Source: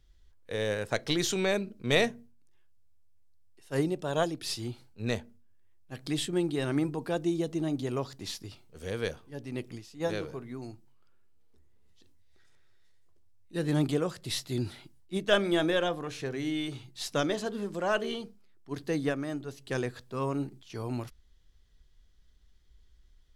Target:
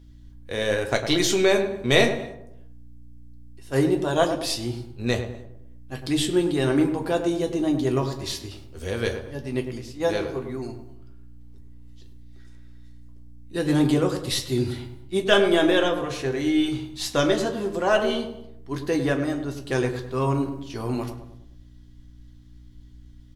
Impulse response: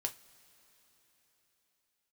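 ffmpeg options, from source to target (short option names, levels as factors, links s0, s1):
-filter_complex "[0:a]asplit=2[s0][s1];[s1]adelay=103,lowpass=f=1200:p=1,volume=0.447,asplit=2[s2][s3];[s3]adelay=103,lowpass=f=1200:p=1,volume=0.48,asplit=2[s4][s5];[s5]adelay=103,lowpass=f=1200:p=1,volume=0.48,asplit=2[s6][s7];[s7]adelay=103,lowpass=f=1200:p=1,volume=0.48,asplit=2[s8][s9];[s9]adelay=103,lowpass=f=1200:p=1,volume=0.48,asplit=2[s10][s11];[s11]adelay=103,lowpass=f=1200:p=1,volume=0.48[s12];[s0][s2][s4][s6][s8][s10][s12]amix=inputs=7:normalize=0,aeval=exprs='val(0)+0.002*(sin(2*PI*60*n/s)+sin(2*PI*2*60*n/s)/2+sin(2*PI*3*60*n/s)/3+sin(2*PI*4*60*n/s)/4+sin(2*PI*5*60*n/s)/5)':c=same[s13];[1:a]atrim=start_sample=2205,afade=t=out:st=0.34:d=0.01,atrim=end_sample=15435[s14];[s13][s14]afir=irnorm=-1:irlink=0,volume=2.24"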